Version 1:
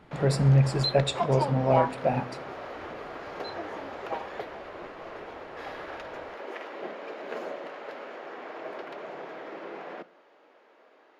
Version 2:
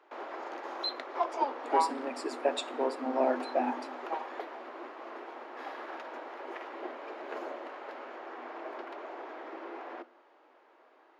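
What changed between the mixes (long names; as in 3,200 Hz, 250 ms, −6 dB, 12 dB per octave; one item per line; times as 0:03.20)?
speech: entry +1.50 s
master: add Chebyshev high-pass with heavy ripple 240 Hz, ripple 6 dB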